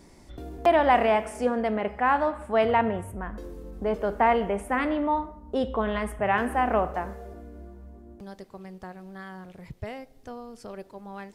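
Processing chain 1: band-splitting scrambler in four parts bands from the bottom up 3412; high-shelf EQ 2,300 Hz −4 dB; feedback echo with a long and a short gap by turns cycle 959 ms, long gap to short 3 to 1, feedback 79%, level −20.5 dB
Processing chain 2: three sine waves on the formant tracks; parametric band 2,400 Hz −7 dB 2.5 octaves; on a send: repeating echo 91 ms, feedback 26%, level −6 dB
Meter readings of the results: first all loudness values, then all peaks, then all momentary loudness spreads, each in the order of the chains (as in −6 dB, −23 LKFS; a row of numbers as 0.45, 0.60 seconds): −25.0, −26.5 LKFS; −10.5, −9.0 dBFS; 18, 23 LU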